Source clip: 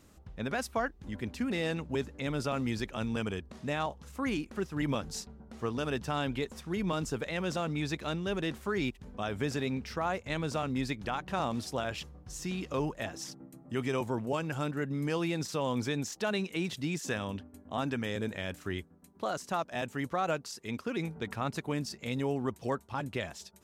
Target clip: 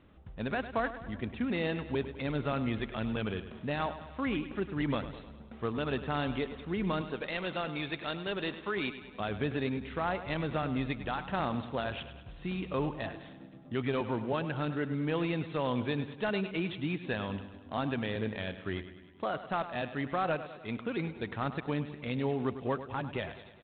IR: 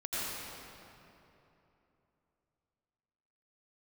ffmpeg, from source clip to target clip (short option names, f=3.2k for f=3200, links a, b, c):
-filter_complex "[0:a]asettb=1/sr,asplit=3[a][b][c];[a]atrim=end=7.014[d];[b]atrim=start=7.01:end=9.2,asetpts=PTS-STARTPTS,afade=t=in:d=0.004:c=qsin,afade=t=out:st=2.186:d=0.004:c=qsin,aemphasis=mode=production:type=bsi[e];[c]atrim=start=9.196[f];[d][e]acrossfade=d=0.004:c1=hsin:c2=qsin[g];[g][f]acrossfade=d=0.004:c1=qsin:c2=hsin,aecho=1:1:102|204|306|408|510|612:0.237|0.135|0.077|0.0439|0.025|0.0143" -ar 8000 -c:a adpcm_ima_wav